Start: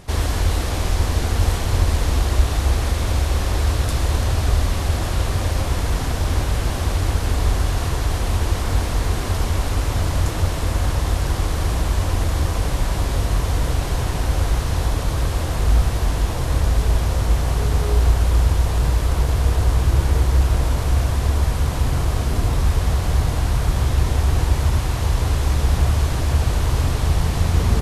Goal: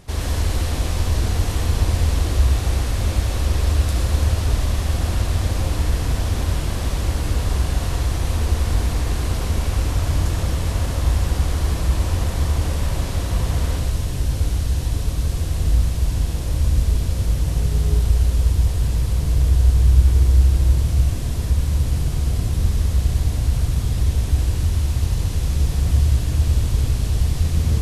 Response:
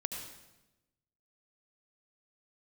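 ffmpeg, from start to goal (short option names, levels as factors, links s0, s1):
-filter_complex "[0:a]asetnsamples=n=441:p=0,asendcmd='13.79 equalizer g -10.5',equalizer=f=1000:t=o:w=2.6:g=-3[s0];[1:a]atrim=start_sample=2205[s1];[s0][s1]afir=irnorm=-1:irlink=0,volume=0.794"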